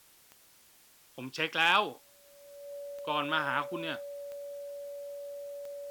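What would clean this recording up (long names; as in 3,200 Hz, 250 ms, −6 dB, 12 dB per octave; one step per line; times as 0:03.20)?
clipped peaks rebuilt −13.5 dBFS
click removal
notch filter 570 Hz, Q 30
noise reduction from a noise print 18 dB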